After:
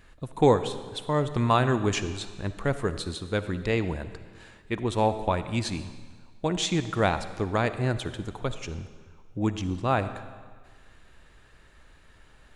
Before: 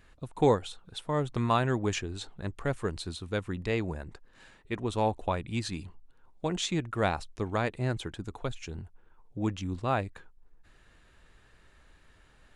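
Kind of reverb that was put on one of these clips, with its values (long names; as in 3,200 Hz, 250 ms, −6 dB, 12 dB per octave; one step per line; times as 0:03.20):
comb and all-pass reverb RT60 1.6 s, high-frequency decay 0.95×, pre-delay 15 ms, DRR 11.5 dB
level +4 dB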